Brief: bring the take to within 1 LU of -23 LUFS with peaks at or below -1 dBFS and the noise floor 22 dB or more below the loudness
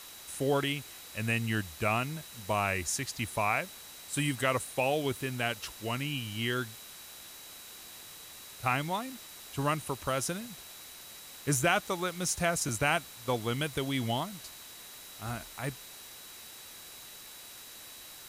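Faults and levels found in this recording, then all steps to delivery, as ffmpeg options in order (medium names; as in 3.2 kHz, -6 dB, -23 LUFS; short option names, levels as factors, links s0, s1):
steady tone 3.9 kHz; tone level -54 dBFS; noise floor -49 dBFS; noise floor target -54 dBFS; loudness -32.0 LUFS; peak level -12.0 dBFS; loudness target -23.0 LUFS
-> -af "bandreject=f=3900:w=30"
-af "afftdn=nr=6:nf=-49"
-af "volume=2.82"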